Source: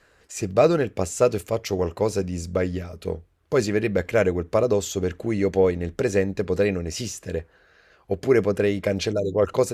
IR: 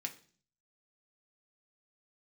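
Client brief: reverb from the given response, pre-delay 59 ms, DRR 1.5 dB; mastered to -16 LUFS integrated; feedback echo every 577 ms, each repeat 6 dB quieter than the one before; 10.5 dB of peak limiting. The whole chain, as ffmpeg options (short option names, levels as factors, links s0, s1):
-filter_complex "[0:a]alimiter=limit=0.168:level=0:latency=1,aecho=1:1:577|1154|1731|2308|2885|3462:0.501|0.251|0.125|0.0626|0.0313|0.0157,asplit=2[s0][s1];[1:a]atrim=start_sample=2205,adelay=59[s2];[s1][s2]afir=irnorm=-1:irlink=0,volume=0.891[s3];[s0][s3]amix=inputs=2:normalize=0,volume=2.82"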